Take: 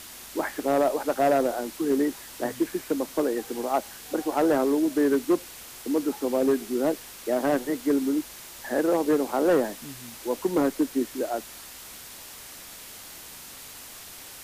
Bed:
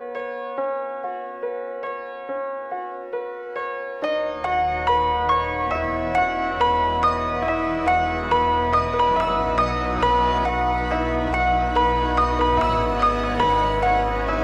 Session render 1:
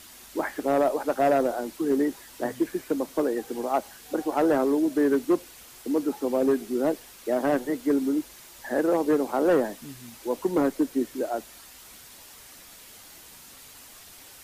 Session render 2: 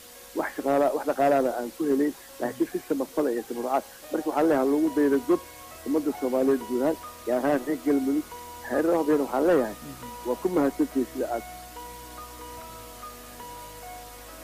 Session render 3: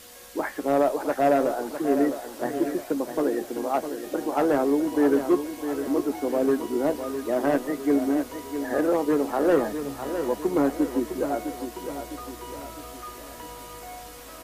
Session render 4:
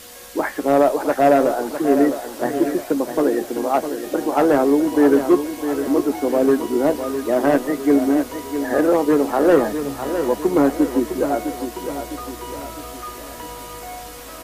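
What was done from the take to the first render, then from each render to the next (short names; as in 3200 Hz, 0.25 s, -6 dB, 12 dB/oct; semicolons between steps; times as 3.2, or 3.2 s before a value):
denoiser 6 dB, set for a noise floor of -44 dBFS
add bed -23 dB
doubler 14 ms -12 dB; feedback echo 0.657 s, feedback 49%, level -9 dB
gain +6.5 dB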